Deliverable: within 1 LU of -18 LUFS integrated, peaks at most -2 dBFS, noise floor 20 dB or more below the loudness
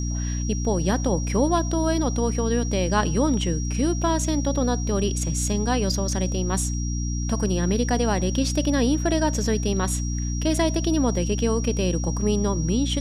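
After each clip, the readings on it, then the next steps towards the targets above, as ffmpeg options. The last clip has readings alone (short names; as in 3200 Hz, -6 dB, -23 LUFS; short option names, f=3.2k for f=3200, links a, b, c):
hum 60 Hz; harmonics up to 300 Hz; hum level -24 dBFS; steady tone 5700 Hz; tone level -35 dBFS; loudness -23.5 LUFS; peak -8.5 dBFS; loudness target -18.0 LUFS
-> -af "bandreject=f=60:t=h:w=4,bandreject=f=120:t=h:w=4,bandreject=f=180:t=h:w=4,bandreject=f=240:t=h:w=4,bandreject=f=300:t=h:w=4"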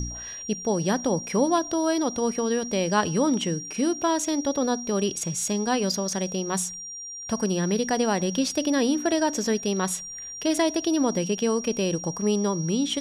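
hum none; steady tone 5700 Hz; tone level -35 dBFS
-> -af "bandreject=f=5.7k:w=30"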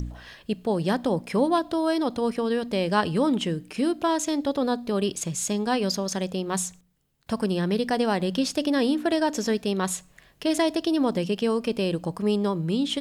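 steady tone none; loudness -25.5 LUFS; peak -10.0 dBFS; loudness target -18.0 LUFS
-> -af "volume=7.5dB"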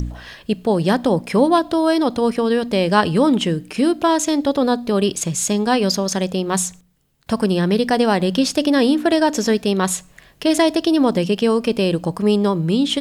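loudness -18.0 LUFS; peak -2.5 dBFS; noise floor -50 dBFS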